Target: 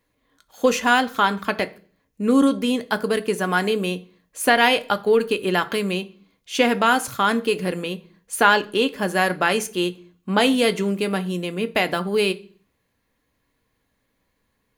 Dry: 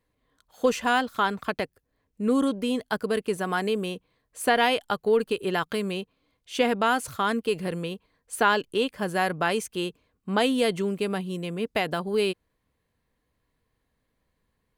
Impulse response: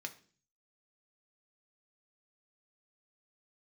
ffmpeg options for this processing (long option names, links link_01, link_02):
-filter_complex "[0:a]asplit=2[link_01][link_02];[1:a]atrim=start_sample=2205,highshelf=frequency=8000:gain=8.5[link_03];[link_02][link_03]afir=irnorm=-1:irlink=0,volume=4.5dB[link_04];[link_01][link_04]amix=inputs=2:normalize=0,volume=-1dB"